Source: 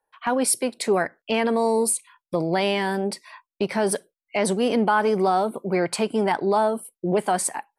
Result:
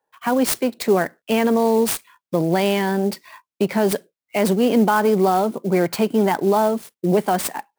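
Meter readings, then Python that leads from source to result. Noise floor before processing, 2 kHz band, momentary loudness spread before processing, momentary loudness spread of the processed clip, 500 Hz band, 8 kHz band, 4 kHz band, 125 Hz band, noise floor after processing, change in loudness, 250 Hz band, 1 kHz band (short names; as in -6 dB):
under -85 dBFS, +1.0 dB, 7 LU, 8 LU, +3.5 dB, -3.0 dB, +1.5 dB, +6.5 dB, under -85 dBFS, +3.5 dB, +6.0 dB, +2.0 dB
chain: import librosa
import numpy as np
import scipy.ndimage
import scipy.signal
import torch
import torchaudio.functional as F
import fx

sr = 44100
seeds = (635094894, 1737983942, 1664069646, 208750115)

y = scipy.signal.sosfilt(scipy.signal.butter(2, 150.0, 'highpass', fs=sr, output='sos'), x)
y = fx.low_shelf(y, sr, hz=260.0, db=10.5)
y = fx.clock_jitter(y, sr, seeds[0], jitter_ms=0.021)
y = F.gain(torch.from_numpy(y), 1.0).numpy()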